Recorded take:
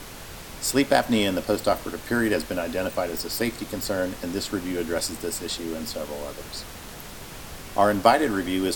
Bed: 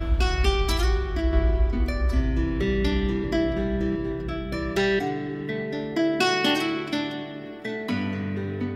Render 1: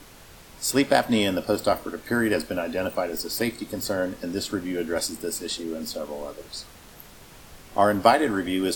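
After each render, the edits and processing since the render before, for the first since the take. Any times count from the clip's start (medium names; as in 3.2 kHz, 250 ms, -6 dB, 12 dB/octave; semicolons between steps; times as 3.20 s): noise print and reduce 8 dB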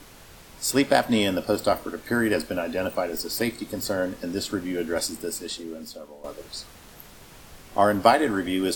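5.13–6.24 s: fade out, to -14 dB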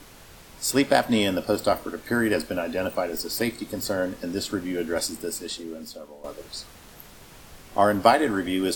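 no audible change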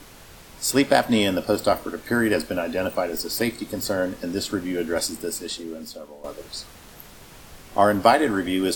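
trim +2 dB; peak limiter -2 dBFS, peak gain reduction 1.5 dB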